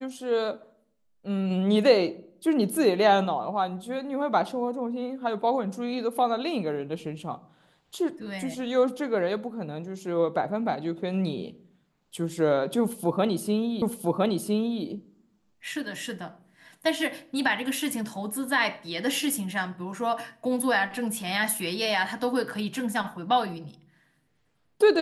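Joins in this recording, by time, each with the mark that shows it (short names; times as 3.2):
13.82 repeat of the last 1.01 s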